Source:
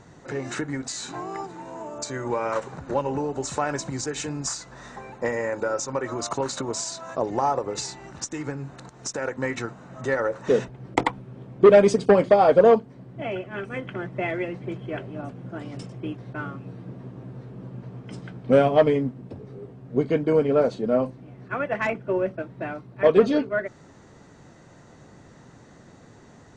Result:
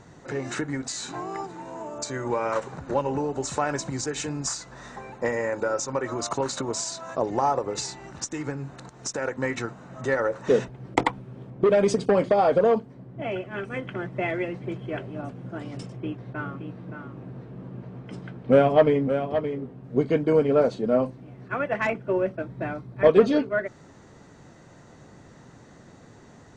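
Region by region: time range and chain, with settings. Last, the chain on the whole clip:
11.50–13.28 s: compression 10:1, threshold -15 dBFS + tape noise reduction on one side only decoder only
15.96–19.84 s: tone controls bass 0 dB, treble -7 dB + delay 571 ms -8.5 dB
22.41–23.10 s: bass shelf 160 Hz +7.5 dB + band-stop 2.8 kHz, Q 13
whole clip: none

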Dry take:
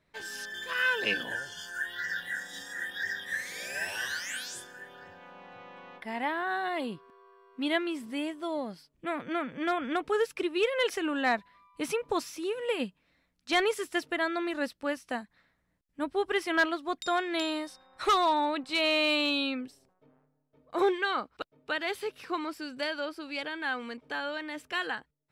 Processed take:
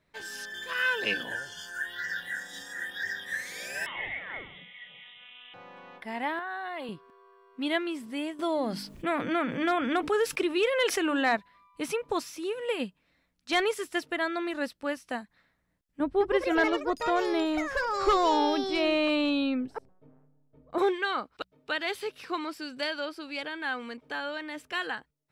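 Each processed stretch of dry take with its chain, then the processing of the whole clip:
3.86–5.54 s: distance through air 74 m + frequency inversion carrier 3.7 kHz
6.39–6.89 s: high-pass 1.1 kHz 6 dB/octave + peaking EQ 7.6 kHz -12.5 dB 2.5 oct + level flattener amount 70%
8.39–11.37 s: hum notches 50/100/150/200/250/300 Hz + level flattener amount 50%
16.00–20.78 s: tilt EQ -3 dB/octave + ever faster or slower copies 203 ms, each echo +5 st, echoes 2, each echo -6 dB
21.32–23.26 s: peaking EQ 4.1 kHz +3 dB 1.7 oct + de-hum 62.26 Hz, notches 3
whole clip: none

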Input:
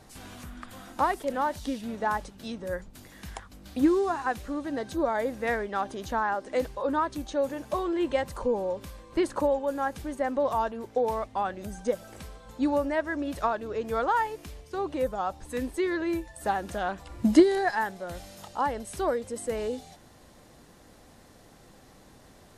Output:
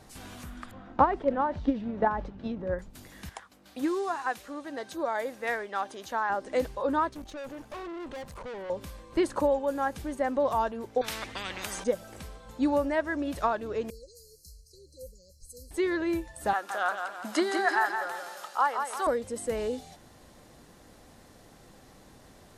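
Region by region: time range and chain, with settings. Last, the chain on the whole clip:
0.71–2.79 s: transient shaper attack +10 dB, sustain +6 dB + tape spacing loss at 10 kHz 39 dB
3.29–6.30 s: high-pass 650 Hz 6 dB/octave + tape noise reduction on one side only decoder only
7.09–8.70 s: valve stage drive 37 dB, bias 0.8 + treble shelf 5 kHz -4 dB
11.01–11.84 s: treble shelf 4.9 kHz -10.5 dB + spectrum-flattening compressor 10:1
13.90–15.71 s: brick-wall FIR band-stop 570–4000 Hz + amplifier tone stack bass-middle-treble 10-0-10
16.53–19.07 s: high-pass 610 Hz + peaking EQ 1.3 kHz +9.5 dB 0.52 oct + feedback delay 169 ms, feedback 44%, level -6.5 dB
whole clip: none

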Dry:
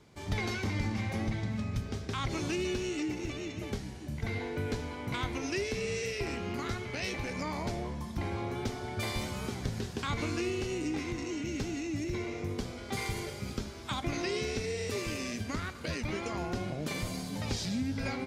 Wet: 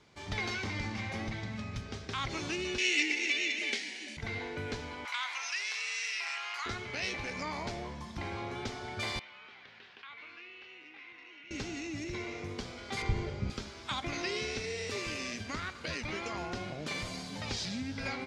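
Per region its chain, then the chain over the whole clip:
2.78–4.17 s: brick-wall FIR band-pass 210–11000 Hz + resonant high shelf 1.6 kHz +9 dB, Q 3
5.05–6.66 s: high-pass 940 Hz 24 dB/octave + level flattener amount 50%
9.19–11.51 s: low-pass 2.7 kHz 24 dB/octave + differentiator + level flattener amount 50%
13.02–13.50 s: low-pass 7.9 kHz 24 dB/octave + tilt EQ -3.5 dB/octave
whole clip: low-pass 6 kHz 12 dB/octave; tilt shelf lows -4.5 dB, about 660 Hz; trim -2 dB

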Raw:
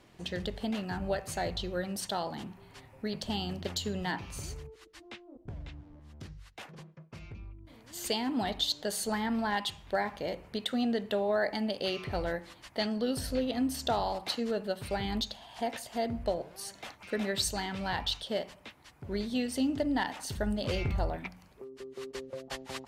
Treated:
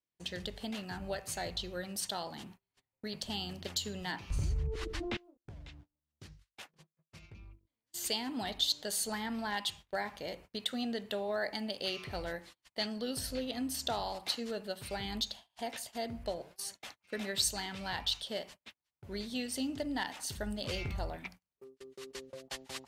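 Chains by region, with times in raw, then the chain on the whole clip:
4.30–5.17 s: RIAA curve playback + level flattener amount 70%
whole clip: gate -46 dBFS, range -33 dB; treble shelf 2.2 kHz +9 dB; trim -7 dB

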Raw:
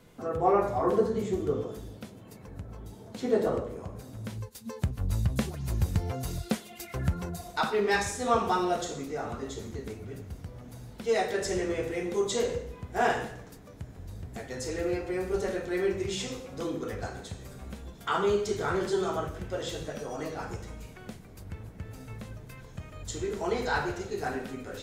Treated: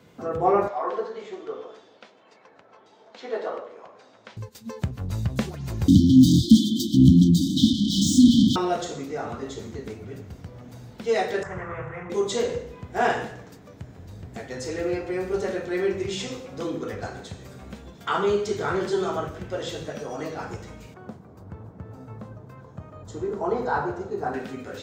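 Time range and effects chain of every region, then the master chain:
0.68–4.37 s: band-pass 660–5800 Hz + distance through air 62 m
5.88–8.56 s: peaking EQ 280 Hz +14.5 dB 1.3 oct + overdrive pedal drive 35 dB, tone 1.5 kHz, clips at -5 dBFS + brick-wall FIR band-stop 320–3000 Hz
11.43–12.10 s: FFT filter 100 Hz 0 dB, 150 Hz +5 dB, 250 Hz -18 dB, 410 Hz -13 dB, 1.2 kHz +11 dB, 4.5 kHz -27 dB, 7.5 kHz -18 dB, 12 kHz -30 dB + loudspeaker Doppler distortion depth 0.27 ms
20.94–24.34 s: high-pass 60 Hz + resonant high shelf 1.6 kHz -11 dB, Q 1.5
whole clip: high-pass 86 Hz; peaking EQ 11 kHz -13 dB 0.59 oct; trim +3.5 dB

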